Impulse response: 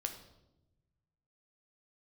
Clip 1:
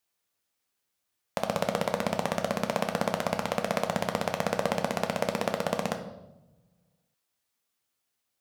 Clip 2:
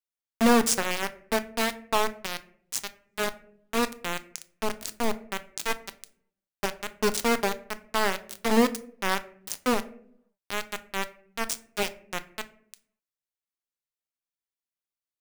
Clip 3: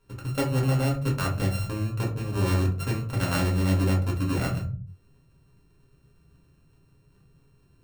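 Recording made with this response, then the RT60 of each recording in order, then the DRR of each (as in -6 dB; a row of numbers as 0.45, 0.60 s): 1; 0.95, 0.65, 0.45 s; 5.0, 10.5, -2.5 dB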